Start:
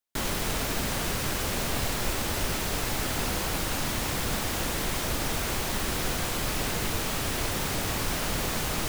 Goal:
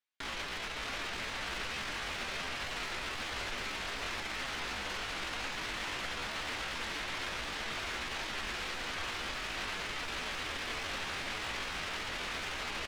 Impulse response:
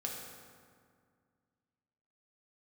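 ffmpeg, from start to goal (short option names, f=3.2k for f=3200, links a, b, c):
-filter_complex "[0:a]alimiter=level_in=1dB:limit=-24dB:level=0:latency=1:release=22,volume=-1dB,lowpass=2.5k,equalizer=f=130:t=o:w=0.86:g=-6.5,asplit=2[a][b];[b]aecho=0:1:905|1810|2715:0.398|0.104|0.0269[c];[a][c]amix=inputs=2:normalize=0,atempo=0.69,tiltshelf=f=1.3k:g=-9.5,asplit=2[d][e];[e]aecho=0:1:596:0.473[f];[d][f]amix=inputs=2:normalize=0,aeval=exprs='clip(val(0),-1,0.0158)':c=same"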